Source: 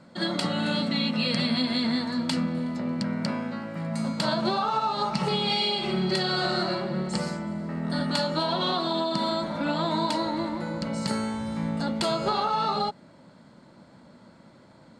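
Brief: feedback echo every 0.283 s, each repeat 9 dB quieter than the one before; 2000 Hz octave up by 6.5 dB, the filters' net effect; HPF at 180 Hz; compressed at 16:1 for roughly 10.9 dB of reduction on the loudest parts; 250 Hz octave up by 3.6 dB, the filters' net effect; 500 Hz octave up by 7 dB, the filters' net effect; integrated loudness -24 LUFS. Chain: HPF 180 Hz; bell 250 Hz +4 dB; bell 500 Hz +8 dB; bell 2000 Hz +8 dB; compressor 16:1, threshold -28 dBFS; feedback echo 0.283 s, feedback 35%, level -9 dB; gain +7.5 dB

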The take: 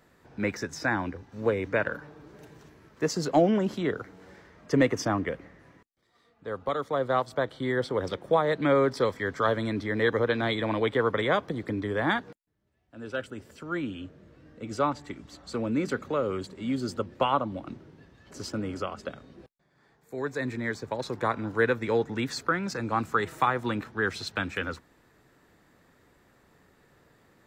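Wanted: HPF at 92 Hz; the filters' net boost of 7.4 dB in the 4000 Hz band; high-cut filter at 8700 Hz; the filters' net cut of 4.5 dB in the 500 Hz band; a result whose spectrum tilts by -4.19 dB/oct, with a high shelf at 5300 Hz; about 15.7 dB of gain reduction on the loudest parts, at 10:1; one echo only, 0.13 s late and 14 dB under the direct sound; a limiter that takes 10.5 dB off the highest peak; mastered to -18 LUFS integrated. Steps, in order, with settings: HPF 92 Hz; LPF 8700 Hz; bell 500 Hz -5.5 dB; bell 4000 Hz +7 dB; high shelf 5300 Hz +5.5 dB; compressor 10:1, threshold -36 dBFS; limiter -33 dBFS; echo 0.13 s -14 dB; gain +25.5 dB

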